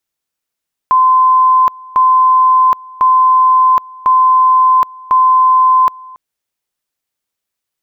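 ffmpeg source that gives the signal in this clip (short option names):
-f lavfi -i "aevalsrc='pow(10,(-5.5-24.5*gte(mod(t,1.05),0.77))/20)*sin(2*PI*1030*t)':d=5.25:s=44100"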